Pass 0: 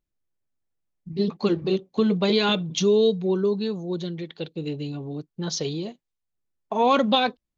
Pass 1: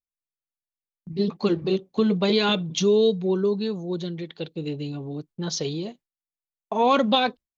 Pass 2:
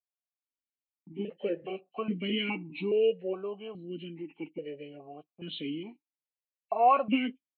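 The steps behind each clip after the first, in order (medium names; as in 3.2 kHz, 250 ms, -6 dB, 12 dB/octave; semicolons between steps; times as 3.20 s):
gate with hold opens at -45 dBFS
knee-point frequency compression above 1.6 kHz 1.5:1; stepped vowel filter 2.4 Hz; trim +4 dB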